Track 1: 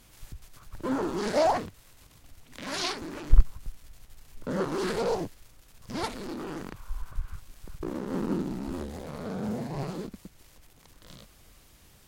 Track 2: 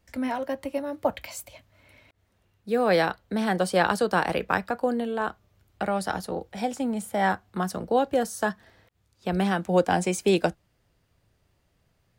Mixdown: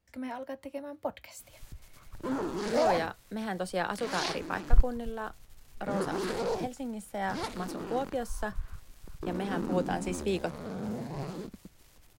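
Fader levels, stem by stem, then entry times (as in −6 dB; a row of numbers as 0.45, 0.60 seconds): −3.5, −9.5 decibels; 1.40, 0.00 seconds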